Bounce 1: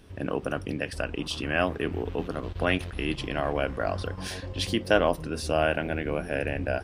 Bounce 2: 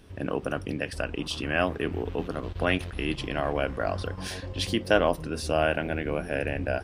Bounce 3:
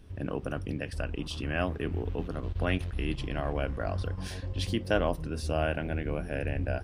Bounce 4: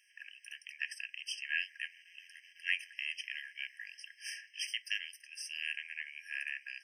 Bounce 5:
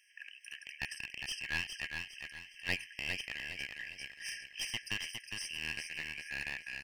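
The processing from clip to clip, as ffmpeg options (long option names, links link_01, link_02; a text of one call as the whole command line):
ffmpeg -i in.wav -af anull out.wav
ffmpeg -i in.wav -af "lowshelf=frequency=160:gain=11.5,volume=-6.5dB" out.wav
ffmpeg -i in.wav -af "afftfilt=real='re*eq(mod(floor(b*sr/1024/1600),2),1)':imag='im*eq(mod(floor(b*sr/1024/1600),2),1)':win_size=1024:overlap=0.75,volume=3.5dB" out.wav
ffmpeg -i in.wav -af "aeval=exprs='clip(val(0),-1,0.0141)':channel_layout=same,aecho=1:1:409|818|1227|1636:0.531|0.191|0.0688|0.0248,volume=1dB" out.wav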